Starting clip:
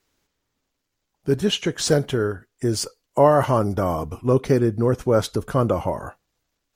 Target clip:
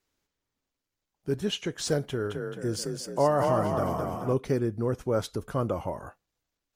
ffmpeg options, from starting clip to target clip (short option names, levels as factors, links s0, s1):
-filter_complex "[0:a]asettb=1/sr,asplit=3[s0][s1][s2];[s0]atrim=end=2.034[s3];[s1]atrim=start=2.03:end=4.34,asetpts=PTS-STARTPTS,afade=t=in:d=0.004:c=qsin,afade=t=out:st=2.306:d=0.004:c=qsin,asplit=8[s4][s5][s6][s7][s8][s9][s10][s11];[s5]adelay=217,afreqshift=31,volume=0.631[s12];[s6]adelay=434,afreqshift=62,volume=0.324[s13];[s7]adelay=651,afreqshift=93,volume=0.164[s14];[s8]adelay=868,afreqshift=124,volume=0.0841[s15];[s9]adelay=1085,afreqshift=155,volume=0.0427[s16];[s10]adelay=1302,afreqshift=186,volume=0.0219[s17];[s11]adelay=1519,afreqshift=217,volume=0.0111[s18];[s4][s12][s13][s14][s15][s16][s17][s18]amix=inputs=8:normalize=0,atrim=end_sample=101871[s19];[s2]atrim=start=4.336[s20];[s3][s19]acrossfade=d=0.004:c1=hsin:c2=qsin[s21];[s21][s20]acrossfade=d=0.004:c1=qsin:c2=hsin,volume=0.376"